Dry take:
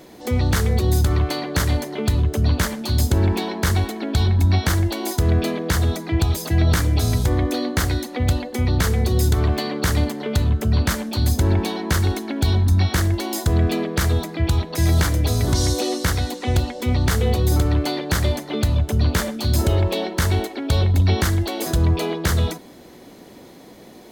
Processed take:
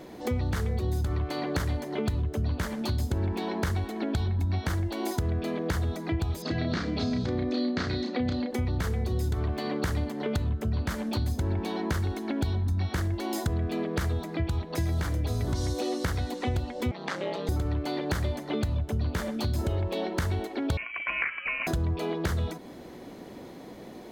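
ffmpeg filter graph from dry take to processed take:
ffmpeg -i in.wav -filter_complex "[0:a]asettb=1/sr,asplit=3[link_01][link_02][link_03];[link_01]atrim=end=6.424[link_04];[link_02]atrim=start=6.42:end=8.51,asetpts=PTS-STARTPTS,afade=type=in:duration=0.004:curve=qsin,afade=type=out:start_time=2.086:duration=0.004:curve=qsin,highpass=140,equalizer=frequency=230:width_type=q:width=4:gain=8,equalizer=frequency=900:width_type=q:width=4:gain=-5,equalizer=frequency=4300:width_type=q:width=4:gain=7,lowpass=frequency=5500:width=0.5412,lowpass=frequency=5500:width=1.3066,asplit=2[link_05][link_06];[link_06]adelay=32,volume=-3dB[link_07];[link_05][link_07]amix=inputs=2:normalize=0,atrim=end_sample=92169[link_08];[link_03]atrim=start=8.506[link_09];[link_04][link_08]acrossfade=duration=0.004:curve1=hsin:curve2=qsin[link_10];[link_10][link_09]acrossfade=duration=0.004:curve1=qsin:curve2=hsin,asettb=1/sr,asplit=3[link_11][link_12][link_13];[link_11]atrim=end=16.914[link_14];[link_12]atrim=start=16.91:end=17.49,asetpts=PTS-STARTPTS,afade=type=in:duration=0.004:curve=qsin,afade=type=out:start_time=0.576:duration=0.004:curve=qsin,aeval=exprs='val(0)*sin(2*PI*94*n/s)':channel_layout=same,highpass=490,lowpass=5000[link_15];[link_13]atrim=start=17.486[link_16];[link_14][link_15]acrossfade=duration=0.004:curve1=hsin:curve2=qsin[link_17];[link_17][link_16]acrossfade=duration=0.004:curve1=qsin:curve2=hsin,asettb=1/sr,asplit=3[link_18][link_19][link_20];[link_18]atrim=end=20.774[link_21];[link_19]atrim=start=20.77:end=21.67,asetpts=PTS-STARTPTS,afade=type=in:duration=0.004:curve=qsin,afade=type=out:start_time=0.896:duration=0.004:curve=qsin,highpass=frequency=990:width_type=q:width=7,lowpass=frequency=2800:width_type=q:width=0.5098,lowpass=frequency=2800:width_type=q:width=0.6013,lowpass=frequency=2800:width_type=q:width=0.9,lowpass=frequency=2800:width_type=q:width=2.563,afreqshift=-3300[link_22];[link_20]atrim=start=21.666[link_23];[link_21][link_22]acrossfade=duration=0.004:curve1=hsin:curve2=qsin[link_24];[link_24][link_23]acrossfade=duration=0.004:curve1=qsin:curve2=hsin,highshelf=frequency=3400:gain=-8.5,acompressor=threshold=-27dB:ratio=4" out.wav

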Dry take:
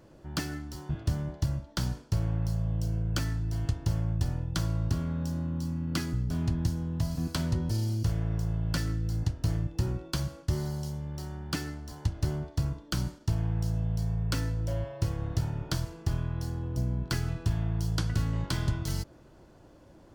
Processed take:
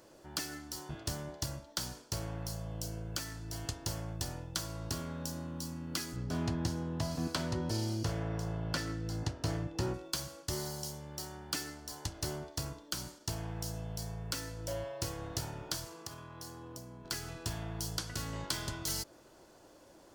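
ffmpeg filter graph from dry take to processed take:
ffmpeg -i in.wav -filter_complex "[0:a]asettb=1/sr,asplit=3[link_01][link_02][link_03];[link_01]atrim=end=6.164[link_04];[link_02]atrim=start=6.16:end=9.94,asetpts=PTS-STARTPTS,afade=type=in:duration=0.004:curve=qsin,afade=type=out:start_time=3.776:duration=0.004:curve=qsin,aemphasis=mode=reproduction:type=75kf,acontrast=32,highpass=62[link_05];[link_03]atrim=start=9.936[link_06];[link_04][link_05]acrossfade=duration=0.004:curve1=hsin:curve2=qsin[link_07];[link_07][link_06]acrossfade=duration=0.004:curve1=qsin:curve2=hsin,asettb=1/sr,asplit=3[link_08][link_09][link_10];[link_08]atrim=end=15.874[link_11];[link_09]atrim=start=15.87:end=17.05,asetpts=PTS-STARTPTS,afade=type=in:duration=0.004:curve=qsin,afade=type=out:start_time=1.176:duration=0.004:curve=qsin,highpass=95,equalizer=frequency=1100:width=4.7:gain=7.5,acompressor=threshold=-39dB:ratio=2.5:attack=3.2:release=140:knee=1:detection=peak[link_12];[link_10]atrim=start=17.046[link_13];[link_11][link_12]acrossfade=duration=0.004:curve1=hsin:curve2=qsin[link_14];[link_14][link_13]acrossfade=duration=0.004:curve1=qsin:curve2=hsin,bass=frequency=250:gain=-13,treble=frequency=4000:gain=8,alimiter=limit=-19dB:level=0:latency=1:release=354" out.wav

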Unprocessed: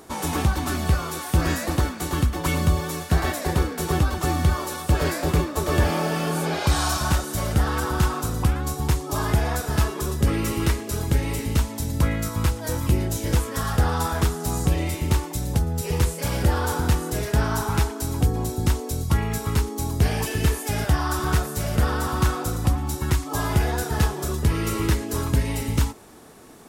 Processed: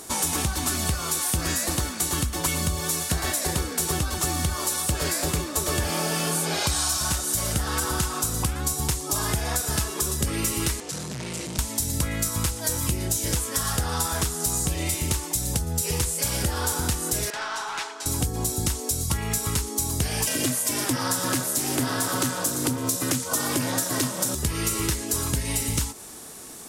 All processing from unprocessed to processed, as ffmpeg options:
ffmpeg -i in.wav -filter_complex "[0:a]asettb=1/sr,asplit=3[link_01][link_02][link_03];[link_01]atrim=end=10.804[link_04];[link_02]atrim=start=10.8:end=11.59,asetpts=PTS-STARTPTS,afade=type=in:duration=0.004:curve=qsin,afade=type=out:start_time=0.786:duration=0.004:curve=qsin,aeval=exprs='(tanh(39.8*val(0)+0.6)-tanh(0.6))/39.8':channel_layout=same,afreqshift=71,highpass=100,lowpass=7000[link_05];[link_03]atrim=start=11.586[link_06];[link_04][link_05]acrossfade=duration=0.004:curve1=hsin:curve2=qsin[link_07];[link_07][link_06]acrossfade=duration=0.004:curve1=qsin:curve2=hsin,asettb=1/sr,asplit=3[link_08][link_09][link_10];[link_08]atrim=end=17.304[link_11];[link_09]atrim=start=17.3:end=18.06,asetpts=PTS-STARTPTS,afade=type=in:duration=0.004:curve=qsin,afade=type=out:start_time=0.756:duration=0.004:curve=qsin,highpass=800,lowpass=3300,aeval=exprs='(tanh(22.4*val(0)+0.05)-tanh(0.05))/22.4':channel_layout=same[link_12];[link_10]atrim=start=18.056[link_13];[link_11][link_12]acrossfade=duration=0.004:curve1=hsin:curve2=qsin[link_14];[link_14][link_13]acrossfade=duration=0.004:curve1=qsin:curve2=hsin,asettb=1/sr,asplit=3[link_15][link_16][link_17];[link_15]atrim=end=20.274[link_18];[link_16]atrim=start=20.27:end=24.35,asetpts=PTS-STARTPTS,afade=type=in:duration=0.004:curve=qsin,afade=type=out:start_time=4.076:duration=0.004:curve=qsin,acontrast=69,aeval=exprs='val(0)*sin(2*PI*190*n/s)':channel_layout=same,highpass=frequency=120:width=0.5412,highpass=frequency=120:width=1.3066[link_19];[link_17]atrim=start=24.346[link_20];[link_18][link_19]acrossfade=duration=0.004:curve1=hsin:curve2=qsin[link_21];[link_21][link_20]acrossfade=duration=0.004:curve1=qsin:curve2=hsin,equalizer=frequency=8900:width=0.39:gain=15,acompressor=threshold=-22dB:ratio=6" out.wav

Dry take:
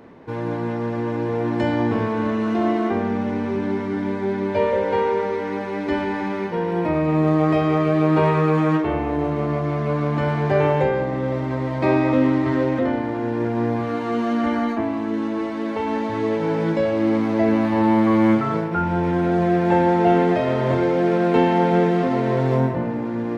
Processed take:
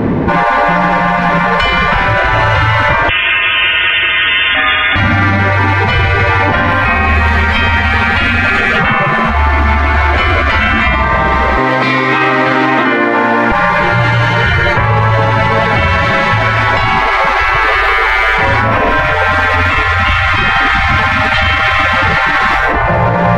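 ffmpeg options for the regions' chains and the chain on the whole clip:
ffmpeg -i in.wav -filter_complex "[0:a]asettb=1/sr,asplit=3[link_01][link_02][link_03];[link_01]atrim=end=3.094[link_04];[link_02]atrim=start=3.09:end=4.96,asetpts=PTS-STARTPTS,afade=type=in:duration=0.004:curve=qsin,afade=type=out:start_time=1.866:duration=0.004:curve=qsin,aecho=1:1:195:0.447,atrim=end_sample=82467,lowpass=frequency=3100:width_type=q:width=0.5098,lowpass=frequency=3100:width_type=q:width=0.6013,lowpass=frequency=3100:width_type=q:width=0.9,lowpass=frequency=3100:width_type=q:width=2.563,afreqshift=-3600[link_05];[link_03]atrim=start=4.956[link_06];[link_04][link_05]acrossfade=duration=0.004:curve1=hsin:curve2=qsin[link_07];[link_07][link_06]acrossfade=duration=0.004:curve1=qsin:curve2=hsin,asettb=1/sr,asplit=3[link_08][link_09][link_10];[link_08]atrim=end=11.574[link_11];[link_09]atrim=start=11.57:end=13.52,asetpts=PTS-STARTPTS,afade=type=in:duration=0.004:curve=qsin,afade=type=out:start_time=1.946:duration=0.004:curve=qsin,highpass=750,asplit=2[link_12][link_13];[link_13]adelay=40,volume=-14dB[link_14];[link_12][link_14]amix=inputs=2:normalize=0,atrim=end_sample=85995[link_15];[link_10]atrim=start=13.516[link_16];[link_11][link_15]acrossfade=duration=0.004:curve1=hsin:curve2=qsin[link_17];[link_17][link_16]acrossfade=duration=0.004:curve1=qsin:curve2=hsin,afftfilt=real='re*lt(hypot(re,im),0.112)':imag='im*lt(hypot(re,im),0.112)':win_size=1024:overlap=0.75,bass=frequency=250:gain=10,treble=frequency=4000:gain=-10,alimiter=level_in=29.5dB:limit=-1dB:release=50:level=0:latency=1,volume=-1dB" out.wav

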